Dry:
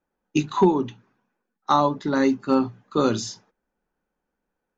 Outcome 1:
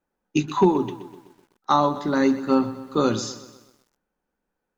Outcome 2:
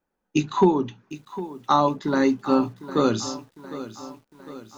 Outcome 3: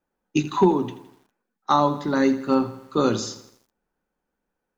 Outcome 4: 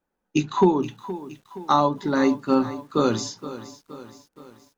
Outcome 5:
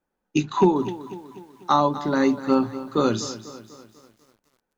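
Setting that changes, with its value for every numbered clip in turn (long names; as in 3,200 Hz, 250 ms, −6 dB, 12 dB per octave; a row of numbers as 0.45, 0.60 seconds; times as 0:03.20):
feedback echo at a low word length, delay time: 126, 755, 82, 470, 247 milliseconds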